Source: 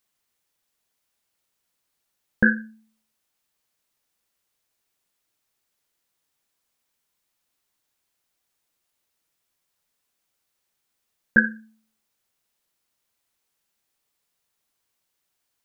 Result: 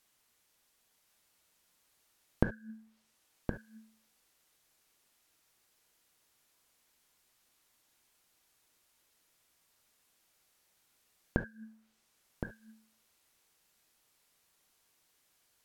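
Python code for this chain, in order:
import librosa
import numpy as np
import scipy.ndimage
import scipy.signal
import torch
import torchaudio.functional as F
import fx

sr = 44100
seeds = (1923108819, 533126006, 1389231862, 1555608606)

y = fx.env_lowpass_down(x, sr, base_hz=1500.0, full_db=-32.0)
y = fx.gate_flip(y, sr, shuts_db=-25.0, range_db=-26)
y = y + 10.0 ** (-7.5 / 20.0) * np.pad(y, (int(1067 * sr / 1000.0), 0))[:len(y)]
y = fx.rev_gated(y, sr, seeds[0], gate_ms=90, shape='flat', drr_db=10.0)
y = F.gain(torch.from_numpy(y), 4.5).numpy()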